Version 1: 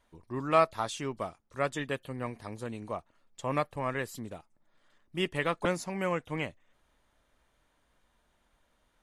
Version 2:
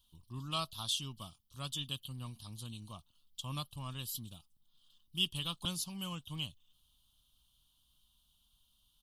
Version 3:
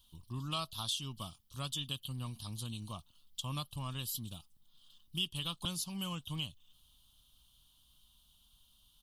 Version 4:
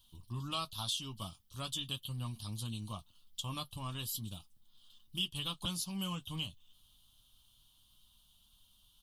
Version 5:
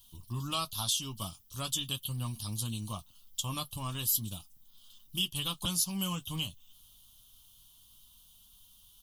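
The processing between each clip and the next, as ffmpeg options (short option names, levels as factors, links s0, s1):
-af "firequalizer=gain_entry='entry(130,0);entry(440,-23);entry(1100,-9);entry(2000,-29);entry(3000,11);entry(6900,1);entry(12000,14)':delay=0.05:min_phase=1,volume=0.794"
-af "acompressor=threshold=0.00631:ratio=2,volume=1.88"
-af "flanger=delay=9.3:depth=1.2:regen=-37:speed=0.4:shape=sinusoidal,volume=1.58"
-af "aexciter=amount=2.8:drive=2.3:freq=5500,volume=1.58"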